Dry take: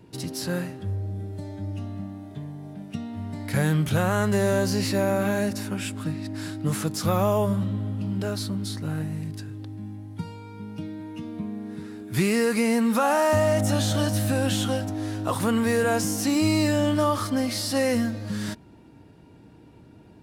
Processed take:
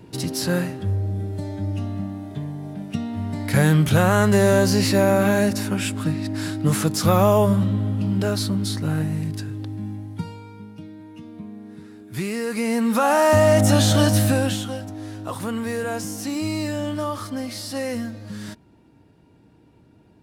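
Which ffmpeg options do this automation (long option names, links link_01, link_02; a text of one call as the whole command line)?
ffmpeg -i in.wav -af "volume=17.5dB,afade=type=out:start_time=9.91:duration=0.84:silence=0.298538,afade=type=in:start_time=12.42:duration=1.22:silence=0.266073,afade=type=out:start_time=14.19:duration=0.45:silence=0.281838" out.wav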